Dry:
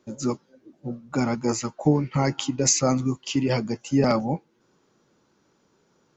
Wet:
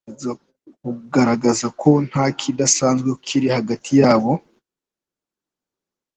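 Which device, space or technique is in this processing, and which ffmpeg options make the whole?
video call: -af "highpass=150,dynaudnorm=f=590:g=3:m=16dB,agate=range=-36dB:threshold=-45dB:ratio=16:detection=peak" -ar 48000 -c:a libopus -b:a 16k

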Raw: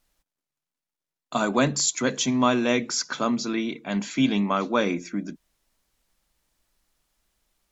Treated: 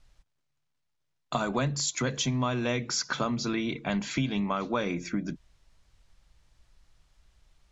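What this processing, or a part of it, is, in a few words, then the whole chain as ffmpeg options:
jukebox: -af "lowpass=6.3k,lowshelf=f=160:t=q:w=1.5:g=10,acompressor=threshold=-31dB:ratio=5,volume=4.5dB"

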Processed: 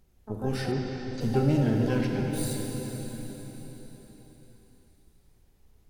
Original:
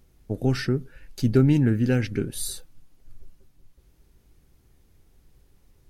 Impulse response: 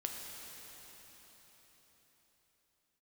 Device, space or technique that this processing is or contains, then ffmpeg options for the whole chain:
shimmer-style reverb: -filter_complex "[0:a]asplit=2[a][b];[b]asetrate=88200,aresample=44100,atempo=0.5,volume=-9dB[c];[a][c]amix=inputs=2:normalize=0[d];[1:a]atrim=start_sample=2205[e];[d][e]afir=irnorm=-1:irlink=0,asplit=3[f][g][h];[f]afade=t=out:st=0.71:d=0.02[i];[g]lowpass=f=6.4k:w=0.5412,lowpass=f=6.4k:w=1.3066,afade=t=in:st=0.71:d=0.02,afade=t=out:st=1.2:d=0.02[j];[h]afade=t=in:st=1.2:d=0.02[k];[i][j][k]amix=inputs=3:normalize=0,volume=-4.5dB"

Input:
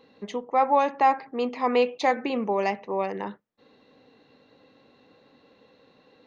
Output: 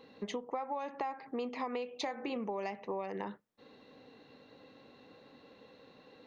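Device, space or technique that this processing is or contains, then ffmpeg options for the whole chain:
serial compression, leveller first: -filter_complex "[0:a]asettb=1/sr,asplit=3[a][b][c];[a]atrim=end=1.874[d];[b]atrim=start=1.87:end=2.36,asetpts=PTS-STARTPTS,afade=t=in:d=0.004:c=qsin,afade=t=out:st=0.486:d=0.004:c=qsin,bandreject=f=49.46:t=h:w=4,bandreject=f=98.92:t=h:w=4,bandreject=f=148.38:t=h:w=4,bandreject=f=197.84:t=h:w=4,bandreject=f=247.3:t=h:w=4,bandreject=f=296.76:t=h:w=4,bandreject=f=346.22:t=h:w=4,bandreject=f=395.68:t=h:w=4,bandreject=f=445.14:t=h:w=4,bandreject=f=494.6:t=h:w=4,bandreject=f=544.06:t=h:w=4,bandreject=f=593.52:t=h:w=4,bandreject=f=642.98:t=h:w=4,bandreject=f=692.44:t=h:w=4,bandreject=f=741.9:t=h:w=4,bandreject=f=791.36:t=h:w=4,bandreject=f=840.82:t=h:w=4,bandreject=f=890.28:t=h:w=4,bandreject=f=939.74:t=h:w=4,bandreject=f=989.2:t=h:w=4,bandreject=f=1.03866k:t=h:w=4,bandreject=f=1.08812k:t=h:w=4,bandreject=f=1.13758k:t=h:w=4,bandreject=f=1.18704k:t=h:w=4,bandreject=f=1.2365k:t=h:w=4,bandreject=f=1.28596k:t=h:w=4,bandreject=f=1.33542k:t=h:w=4[e];[c]atrim=start=2.356[f];[d][e]acrossfade=d=0.004:c1=hsin:c2=qsin[g];[g][f]acrossfade=d=0.004:c1=qsin:c2=hsin,acompressor=threshold=-24dB:ratio=2.5,acompressor=threshold=-35dB:ratio=6"

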